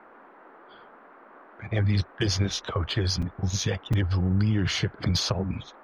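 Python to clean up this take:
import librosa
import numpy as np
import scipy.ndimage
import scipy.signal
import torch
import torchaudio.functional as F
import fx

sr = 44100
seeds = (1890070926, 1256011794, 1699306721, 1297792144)

y = fx.fix_interpolate(x, sr, at_s=(3.22, 3.93), length_ms=4.9)
y = fx.noise_reduce(y, sr, print_start_s=0.0, print_end_s=0.5, reduce_db=20.0)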